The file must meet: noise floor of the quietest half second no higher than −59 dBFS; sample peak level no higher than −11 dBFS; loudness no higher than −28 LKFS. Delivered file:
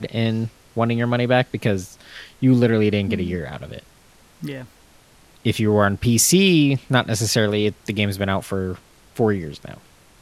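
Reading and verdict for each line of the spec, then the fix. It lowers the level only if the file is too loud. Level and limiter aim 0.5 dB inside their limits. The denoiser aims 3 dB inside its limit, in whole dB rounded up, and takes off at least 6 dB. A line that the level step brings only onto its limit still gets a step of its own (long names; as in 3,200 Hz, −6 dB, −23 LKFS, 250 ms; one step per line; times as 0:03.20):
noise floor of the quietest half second −52 dBFS: out of spec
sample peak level −2.5 dBFS: out of spec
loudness −20.0 LKFS: out of spec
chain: level −8.5 dB
brickwall limiter −11.5 dBFS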